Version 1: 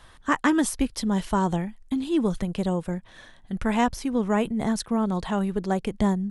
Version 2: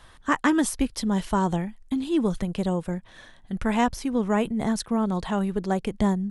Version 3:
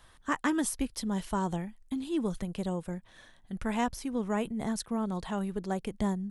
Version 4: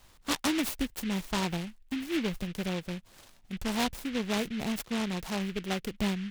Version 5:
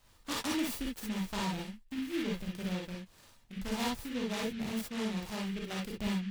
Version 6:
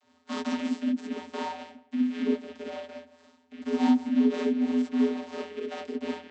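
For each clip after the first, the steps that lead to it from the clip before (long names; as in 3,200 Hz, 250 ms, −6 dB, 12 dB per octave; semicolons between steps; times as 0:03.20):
no processing that can be heard
high-shelf EQ 10,000 Hz +9 dB; level −7.5 dB
short delay modulated by noise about 2,300 Hz, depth 0.16 ms
reverb whose tail is shaped and stops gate 80 ms rising, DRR −2 dB; level −8.5 dB
tape delay 167 ms, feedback 23%, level −15 dB, low-pass 1,500 Hz; channel vocoder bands 32, square 83.9 Hz; level +8.5 dB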